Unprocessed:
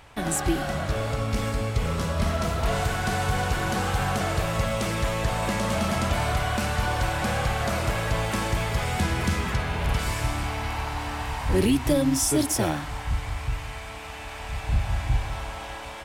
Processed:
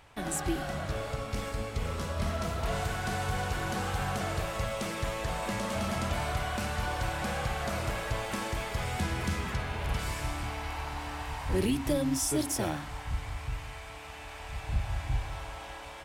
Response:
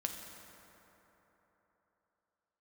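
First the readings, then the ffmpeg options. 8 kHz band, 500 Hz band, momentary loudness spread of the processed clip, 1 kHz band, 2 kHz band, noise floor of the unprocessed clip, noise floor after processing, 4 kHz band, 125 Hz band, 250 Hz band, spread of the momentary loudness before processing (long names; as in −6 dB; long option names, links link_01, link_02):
−6.5 dB, −6.5 dB, 9 LU, −6.5 dB, −6.5 dB, −37 dBFS, −44 dBFS, −6.5 dB, −7.5 dB, −7.0 dB, 9 LU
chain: -af "bandreject=frequency=55.17:width_type=h:width=4,bandreject=frequency=110.34:width_type=h:width=4,bandreject=frequency=165.51:width_type=h:width=4,bandreject=frequency=220.68:width_type=h:width=4,bandreject=frequency=275.85:width_type=h:width=4,volume=-6.5dB"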